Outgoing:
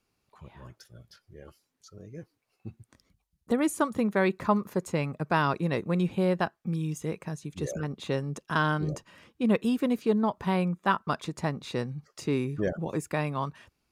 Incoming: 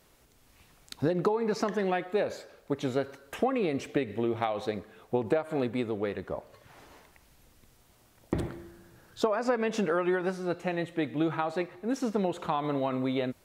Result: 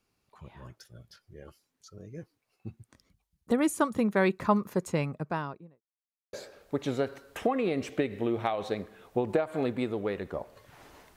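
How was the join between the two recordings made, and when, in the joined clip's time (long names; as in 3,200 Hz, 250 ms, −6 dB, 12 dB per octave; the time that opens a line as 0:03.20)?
outgoing
0:04.89–0:05.82: fade out and dull
0:05.82–0:06.33: silence
0:06.33: continue with incoming from 0:02.30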